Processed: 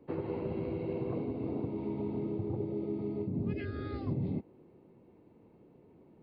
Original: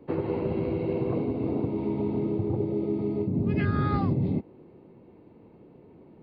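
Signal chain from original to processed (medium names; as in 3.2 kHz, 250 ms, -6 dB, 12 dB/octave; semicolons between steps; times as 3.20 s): 3.53–4.07 s: static phaser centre 410 Hz, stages 4; trim -7.5 dB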